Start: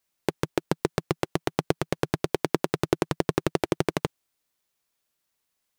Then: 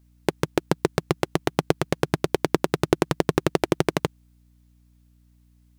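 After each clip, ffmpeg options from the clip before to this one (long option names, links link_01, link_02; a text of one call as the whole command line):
ffmpeg -i in.wav -af "aeval=exprs='val(0)+0.001*(sin(2*PI*60*n/s)+sin(2*PI*2*60*n/s)/2+sin(2*PI*3*60*n/s)/3+sin(2*PI*4*60*n/s)/4+sin(2*PI*5*60*n/s)/5)':channel_layout=same,volume=3.5dB" out.wav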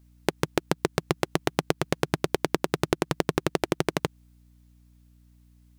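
ffmpeg -i in.wav -af "acompressor=threshold=-20dB:ratio=6,volume=1dB" out.wav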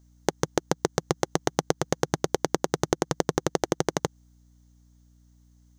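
ffmpeg -i in.wav -af "equalizer=frequency=500:width_type=o:width=0.33:gain=4,equalizer=frequency=800:width_type=o:width=0.33:gain=4,equalizer=frequency=2500:width_type=o:width=0.33:gain=-10,equalizer=frequency=6300:width_type=o:width=0.33:gain=12,equalizer=frequency=10000:width_type=o:width=0.33:gain=-5,equalizer=frequency=16000:width_type=o:width=0.33:gain=-11,volume=-1dB" out.wav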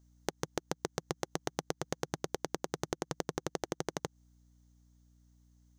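ffmpeg -i in.wav -af "acompressor=threshold=-26dB:ratio=2.5,volume=-6.5dB" out.wav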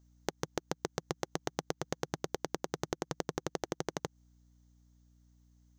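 ffmpeg -i in.wav -af "equalizer=frequency=9900:width=2.9:gain=-11" out.wav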